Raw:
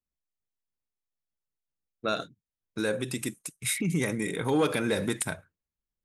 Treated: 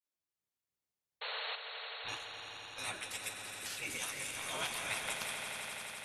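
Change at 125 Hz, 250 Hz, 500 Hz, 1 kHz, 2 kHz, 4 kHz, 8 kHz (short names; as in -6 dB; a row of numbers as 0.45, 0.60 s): -22.0, -25.5, -18.0, -6.5, -4.0, -1.0, -5.5 dB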